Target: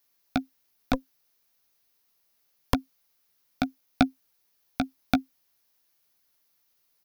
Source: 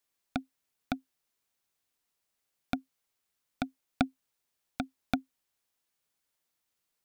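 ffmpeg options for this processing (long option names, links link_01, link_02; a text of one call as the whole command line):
ffmpeg -i in.wav -filter_complex "[0:a]aexciter=amount=1.5:drive=1.4:freq=4500,asplit=2[link_01][link_02];[link_02]adelay=15,volume=-10dB[link_03];[link_01][link_03]amix=inputs=2:normalize=0,asettb=1/sr,asplit=3[link_04][link_05][link_06];[link_04]atrim=end=0.934[link_07];[link_05]atrim=start=0.93:end=2.74,asetpts=PTS-STARTPTS,afade=type=in:duration=0.004:curve=qsin,afade=type=out:start_time=1.806:duration=0.004:curve=qsin,aeval=exprs='0.266*(cos(1*acos(clip(val(0)/0.266,-1,1)))-cos(1*PI/2))+0.0944*(cos(8*acos(clip(val(0)/0.266,-1,1)))-cos(8*PI/2))':channel_layout=same[link_08];[link_06]atrim=start=2.736[link_09];[link_07][link_08]acrossfade=duration=0.004:curve1=hsin:curve2=qsin[link_10];[link_10][link_09]acrossfade=duration=0.004:curve1=qsin:curve2=hsin,volume=6dB" out.wav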